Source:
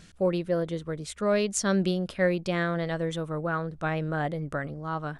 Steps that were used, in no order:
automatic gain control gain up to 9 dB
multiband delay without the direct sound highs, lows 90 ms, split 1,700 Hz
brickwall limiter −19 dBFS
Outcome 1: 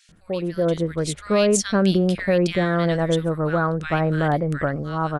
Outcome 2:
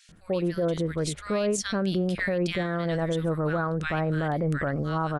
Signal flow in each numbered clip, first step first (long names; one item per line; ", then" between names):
brickwall limiter, then automatic gain control, then multiband delay without the direct sound
automatic gain control, then multiband delay without the direct sound, then brickwall limiter